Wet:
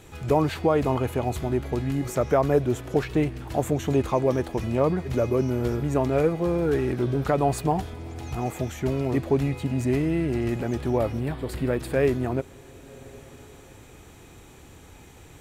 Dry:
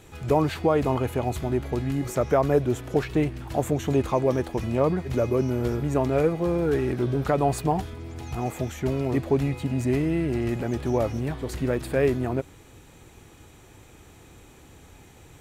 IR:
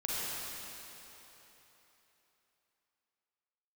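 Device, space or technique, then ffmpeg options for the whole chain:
ducked reverb: -filter_complex "[0:a]asplit=3[s0][s1][s2];[1:a]atrim=start_sample=2205[s3];[s1][s3]afir=irnorm=-1:irlink=0[s4];[s2]apad=whole_len=679427[s5];[s4][s5]sidechaincompress=threshold=0.0112:ratio=8:attack=16:release=639,volume=0.211[s6];[s0][s6]amix=inputs=2:normalize=0,asettb=1/sr,asplit=3[s7][s8][s9];[s7]atrim=end=10.864[s10];[s8]atrim=start=10.86:end=11.8,asetpts=PTS-STARTPTS,afade=t=in:d=0.004:c=qsin,afade=t=out:st=0.936:d=0.004:c=qsin,equalizer=f=6200:t=o:w=0.34:g=-10[s11];[s9]atrim=start=11.796[s12];[s10][s11]acrossfade=d=0.004:c1=hsin:c2=qsin[s13];[s13][s12]acrossfade=d=0.004:c1=qsin:c2=hsin"

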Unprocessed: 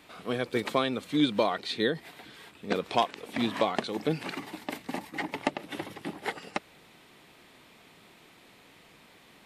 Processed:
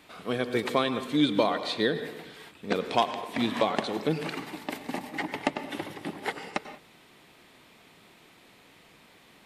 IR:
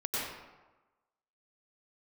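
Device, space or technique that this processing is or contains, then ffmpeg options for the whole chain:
keyed gated reverb: -filter_complex "[0:a]asplit=3[s0][s1][s2];[1:a]atrim=start_sample=2205[s3];[s1][s3]afir=irnorm=-1:irlink=0[s4];[s2]apad=whole_len=417174[s5];[s4][s5]sidechaingate=range=0.0224:threshold=0.00282:ratio=16:detection=peak,volume=0.178[s6];[s0][s6]amix=inputs=2:normalize=0"

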